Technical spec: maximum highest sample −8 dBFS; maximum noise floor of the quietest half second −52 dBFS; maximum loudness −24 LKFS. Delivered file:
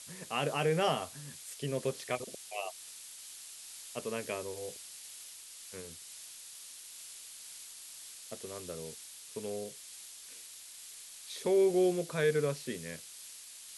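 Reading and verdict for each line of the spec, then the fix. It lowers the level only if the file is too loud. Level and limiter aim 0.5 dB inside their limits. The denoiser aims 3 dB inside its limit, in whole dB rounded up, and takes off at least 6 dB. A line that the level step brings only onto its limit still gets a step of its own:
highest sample −17.5 dBFS: in spec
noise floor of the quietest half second −50 dBFS: out of spec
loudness −37.0 LKFS: in spec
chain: broadband denoise 6 dB, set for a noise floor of −50 dBFS

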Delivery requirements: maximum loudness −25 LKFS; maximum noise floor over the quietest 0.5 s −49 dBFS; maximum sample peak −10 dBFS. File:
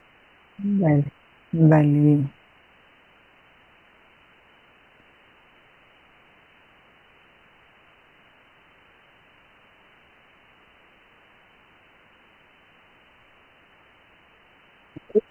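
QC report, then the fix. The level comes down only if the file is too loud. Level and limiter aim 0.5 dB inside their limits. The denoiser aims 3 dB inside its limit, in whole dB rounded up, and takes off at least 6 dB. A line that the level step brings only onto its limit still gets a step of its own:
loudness −20.5 LKFS: out of spec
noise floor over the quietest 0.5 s −56 dBFS: in spec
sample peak −6.0 dBFS: out of spec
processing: level −5 dB

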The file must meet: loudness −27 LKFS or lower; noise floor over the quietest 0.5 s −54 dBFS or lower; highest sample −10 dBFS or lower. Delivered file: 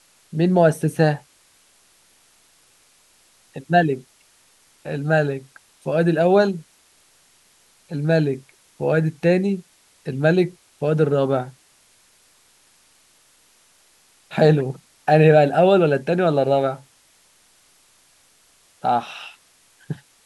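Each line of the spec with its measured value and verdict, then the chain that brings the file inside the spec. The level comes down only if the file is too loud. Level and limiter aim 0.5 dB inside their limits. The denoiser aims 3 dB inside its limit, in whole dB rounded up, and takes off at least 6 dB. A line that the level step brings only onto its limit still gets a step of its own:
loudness −19.5 LKFS: out of spec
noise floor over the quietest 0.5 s −57 dBFS: in spec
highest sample −3.0 dBFS: out of spec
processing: level −8 dB

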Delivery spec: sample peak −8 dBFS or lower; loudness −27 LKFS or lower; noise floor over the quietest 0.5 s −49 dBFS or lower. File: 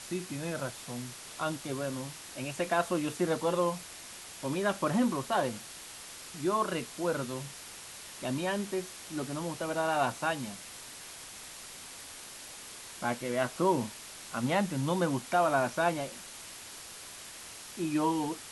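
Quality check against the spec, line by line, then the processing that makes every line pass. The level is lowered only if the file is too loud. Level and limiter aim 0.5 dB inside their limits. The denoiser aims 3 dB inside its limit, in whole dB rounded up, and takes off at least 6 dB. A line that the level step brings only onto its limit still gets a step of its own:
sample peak −15.0 dBFS: in spec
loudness −32.5 LKFS: in spec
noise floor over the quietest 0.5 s −47 dBFS: out of spec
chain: broadband denoise 6 dB, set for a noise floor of −47 dBFS

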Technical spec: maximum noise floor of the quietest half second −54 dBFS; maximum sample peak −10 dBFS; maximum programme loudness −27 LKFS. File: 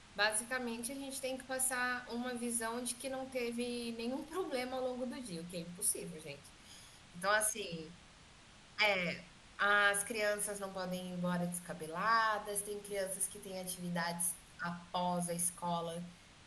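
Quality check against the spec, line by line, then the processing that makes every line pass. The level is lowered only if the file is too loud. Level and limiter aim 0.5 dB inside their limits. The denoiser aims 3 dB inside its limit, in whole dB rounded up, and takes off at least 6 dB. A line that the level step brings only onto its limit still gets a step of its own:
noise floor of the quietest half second −60 dBFS: in spec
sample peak −17.5 dBFS: in spec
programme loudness −37.0 LKFS: in spec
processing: no processing needed

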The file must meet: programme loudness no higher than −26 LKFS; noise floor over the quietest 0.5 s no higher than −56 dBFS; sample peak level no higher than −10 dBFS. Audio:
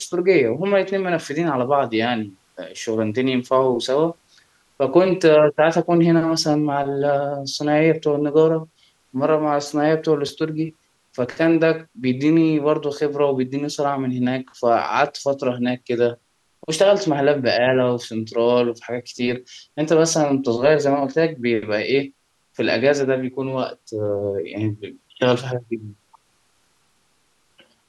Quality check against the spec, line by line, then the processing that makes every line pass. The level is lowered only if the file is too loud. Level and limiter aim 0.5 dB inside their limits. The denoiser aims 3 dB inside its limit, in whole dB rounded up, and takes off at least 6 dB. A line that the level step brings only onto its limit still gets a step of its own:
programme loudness −20.0 LKFS: out of spec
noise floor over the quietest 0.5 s −63 dBFS: in spec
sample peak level −4.0 dBFS: out of spec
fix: level −6.5 dB

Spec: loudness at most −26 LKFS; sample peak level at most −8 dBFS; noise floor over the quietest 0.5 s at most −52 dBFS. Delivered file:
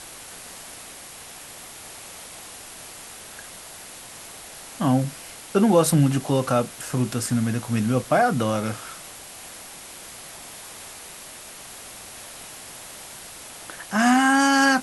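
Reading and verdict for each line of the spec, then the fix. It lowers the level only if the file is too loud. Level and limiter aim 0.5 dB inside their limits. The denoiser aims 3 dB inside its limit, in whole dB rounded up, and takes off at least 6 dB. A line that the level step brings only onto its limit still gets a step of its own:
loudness −21.5 LKFS: out of spec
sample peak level −6.0 dBFS: out of spec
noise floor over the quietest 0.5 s −41 dBFS: out of spec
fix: broadband denoise 9 dB, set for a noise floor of −41 dBFS
level −5 dB

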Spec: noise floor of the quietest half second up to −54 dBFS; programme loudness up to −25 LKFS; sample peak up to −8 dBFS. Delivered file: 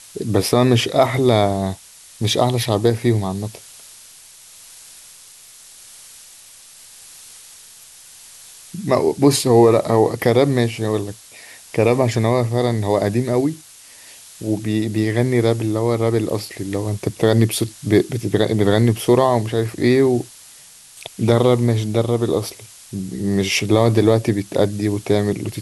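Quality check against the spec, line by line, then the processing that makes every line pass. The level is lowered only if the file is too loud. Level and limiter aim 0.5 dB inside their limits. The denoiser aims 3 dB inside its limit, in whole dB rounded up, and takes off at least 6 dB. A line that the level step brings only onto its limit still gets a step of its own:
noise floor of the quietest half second −44 dBFS: out of spec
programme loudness −18.0 LKFS: out of spec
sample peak −2.0 dBFS: out of spec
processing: broadband denoise 6 dB, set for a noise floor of −44 dBFS
level −7.5 dB

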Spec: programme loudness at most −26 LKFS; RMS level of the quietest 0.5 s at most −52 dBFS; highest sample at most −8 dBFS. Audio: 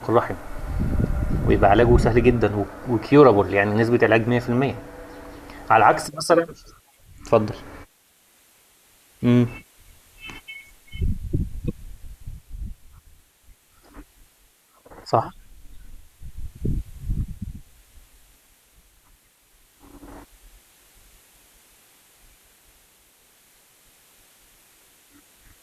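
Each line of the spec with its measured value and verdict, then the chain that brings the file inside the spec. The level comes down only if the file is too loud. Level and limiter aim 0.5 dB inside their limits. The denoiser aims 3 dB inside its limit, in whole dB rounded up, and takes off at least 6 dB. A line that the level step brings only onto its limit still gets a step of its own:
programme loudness −20.5 LKFS: out of spec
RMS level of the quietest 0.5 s −59 dBFS: in spec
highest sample −3.0 dBFS: out of spec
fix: level −6 dB

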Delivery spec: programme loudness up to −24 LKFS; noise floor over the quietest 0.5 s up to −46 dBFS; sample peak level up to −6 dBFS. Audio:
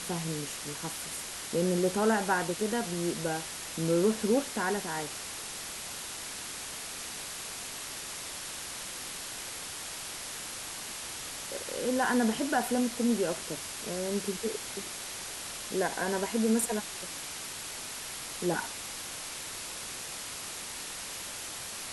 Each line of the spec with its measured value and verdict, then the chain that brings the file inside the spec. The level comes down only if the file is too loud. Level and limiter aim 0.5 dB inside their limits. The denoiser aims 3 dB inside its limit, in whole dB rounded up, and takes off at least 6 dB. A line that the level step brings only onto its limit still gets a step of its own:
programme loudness −33.0 LKFS: in spec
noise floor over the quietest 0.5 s −40 dBFS: out of spec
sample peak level −15.5 dBFS: in spec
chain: broadband denoise 9 dB, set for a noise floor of −40 dBFS

